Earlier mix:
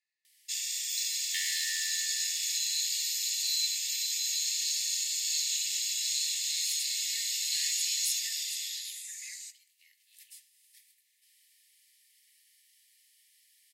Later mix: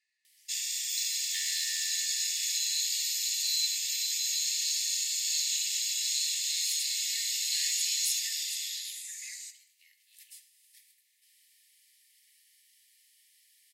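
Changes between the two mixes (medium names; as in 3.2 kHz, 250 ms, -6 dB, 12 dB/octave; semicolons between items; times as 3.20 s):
speech +8.0 dB; first sound: send +7.0 dB; second sound -5.0 dB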